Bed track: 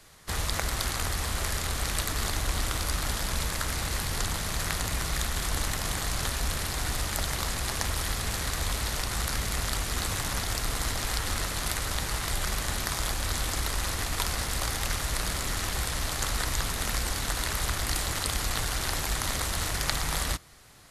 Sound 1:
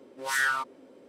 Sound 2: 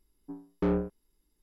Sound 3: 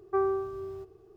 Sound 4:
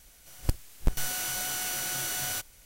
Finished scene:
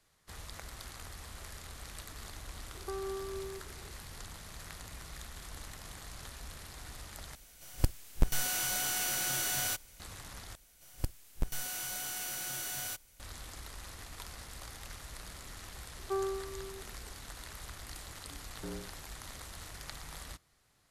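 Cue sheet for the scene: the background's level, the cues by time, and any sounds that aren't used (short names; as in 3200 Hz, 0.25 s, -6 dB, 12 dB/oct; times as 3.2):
bed track -17 dB
2.75 add 3 -3 dB + compressor, threshold -33 dBFS
7.35 replace with 4 -1 dB
10.55 replace with 4 -7.5 dB + bell 12000 Hz +2 dB 0.92 oct
15.97 add 3 -7 dB
18.01 add 2 -16 dB
not used: 1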